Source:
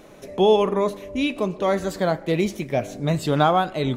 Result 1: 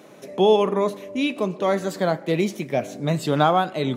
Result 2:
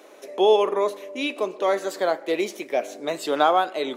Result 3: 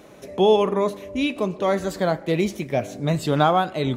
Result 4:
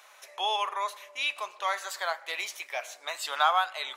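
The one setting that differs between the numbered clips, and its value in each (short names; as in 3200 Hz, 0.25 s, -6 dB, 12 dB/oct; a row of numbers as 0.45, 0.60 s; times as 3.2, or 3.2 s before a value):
HPF, cutoff: 130, 330, 46, 920 Hz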